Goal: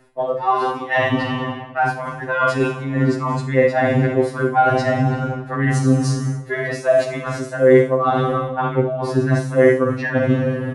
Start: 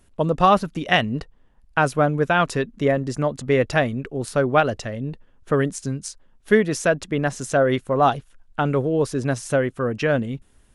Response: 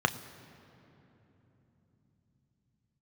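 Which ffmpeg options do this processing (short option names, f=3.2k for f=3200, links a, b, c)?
-filter_complex "[0:a]aecho=1:1:44|73:0.376|0.355,asplit=2[a][b];[b]asoftclip=type=tanh:threshold=-13dB,volume=-12dB[c];[a][c]amix=inputs=2:normalize=0,lowshelf=f=290:g=-8[d];[1:a]atrim=start_sample=2205,asetrate=27783,aresample=44100[e];[d][e]afir=irnorm=-1:irlink=0,areverse,acompressor=threshold=-12dB:ratio=12,areverse,afftfilt=real='re*2.45*eq(mod(b,6),0)':imag='im*2.45*eq(mod(b,6),0)':win_size=2048:overlap=0.75"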